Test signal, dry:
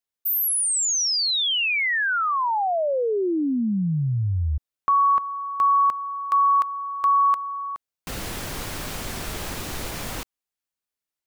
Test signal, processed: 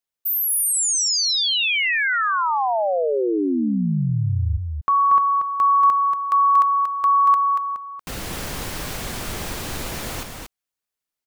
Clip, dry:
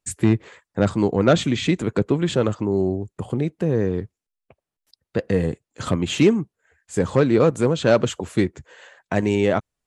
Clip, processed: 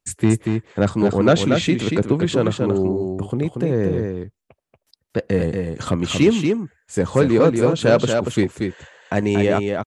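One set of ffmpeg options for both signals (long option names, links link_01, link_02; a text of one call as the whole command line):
ffmpeg -i in.wav -af "aecho=1:1:234:0.562,volume=1dB" out.wav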